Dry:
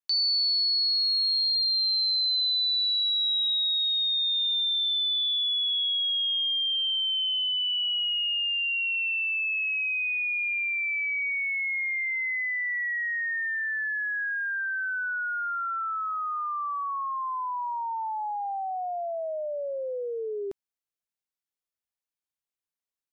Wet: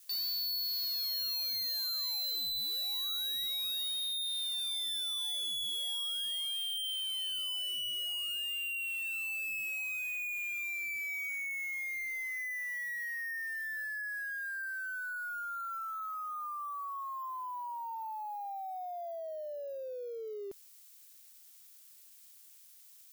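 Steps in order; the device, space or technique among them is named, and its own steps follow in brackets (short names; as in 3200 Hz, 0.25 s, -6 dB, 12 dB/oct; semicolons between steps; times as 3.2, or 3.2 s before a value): budget class-D amplifier (switching dead time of 0.055 ms; switching spikes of -36 dBFS); gain -9 dB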